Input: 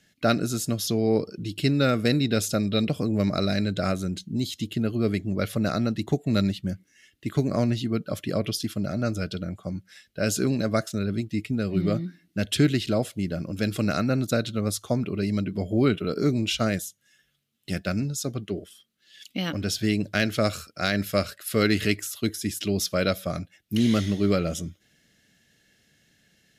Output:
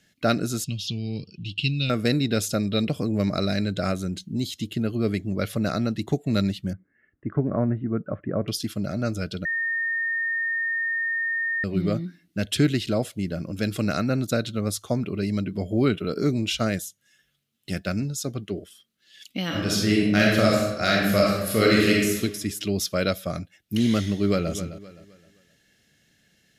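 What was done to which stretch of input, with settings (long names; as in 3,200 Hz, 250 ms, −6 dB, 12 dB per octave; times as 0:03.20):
0:00.64–0:01.90: drawn EQ curve 150 Hz 0 dB, 450 Hz −18 dB, 1,800 Hz −23 dB, 2,700 Hz +10 dB, 12,000 Hz −21 dB
0:06.73–0:08.48: Butterworth low-pass 1,700 Hz
0:09.45–0:11.64: beep over 1,830 Hz −23 dBFS
0:19.46–0:22.20: thrown reverb, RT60 1.1 s, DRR −3.5 dB
0:24.07–0:24.52: delay throw 260 ms, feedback 35%, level −12.5 dB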